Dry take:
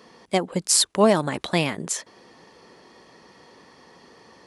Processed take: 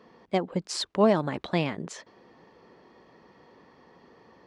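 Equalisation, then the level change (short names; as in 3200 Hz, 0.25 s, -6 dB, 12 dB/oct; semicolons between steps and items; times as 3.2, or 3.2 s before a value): dynamic EQ 5100 Hz, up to +4 dB, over -40 dBFS, Q 0.8; tape spacing loss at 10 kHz 25 dB; -2.5 dB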